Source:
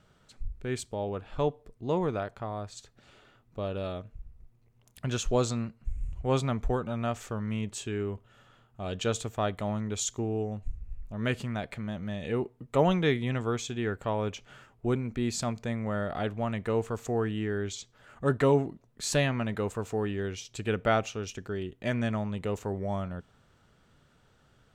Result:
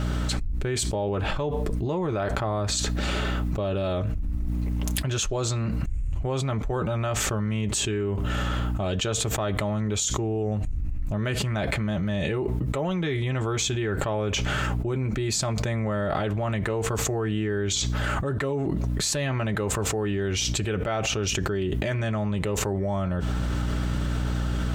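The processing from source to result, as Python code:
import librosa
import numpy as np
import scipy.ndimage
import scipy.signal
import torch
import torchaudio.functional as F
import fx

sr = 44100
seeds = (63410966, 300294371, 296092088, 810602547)

y = fx.notch_comb(x, sr, f0_hz=240.0)
y = fx.add_hum(y, sr, base_hz=60, snr_db=24)
y = fx.env_flatten(y, sr, amount_pct=100)
y = y * 10.0 ** (-5.5 / 20.0)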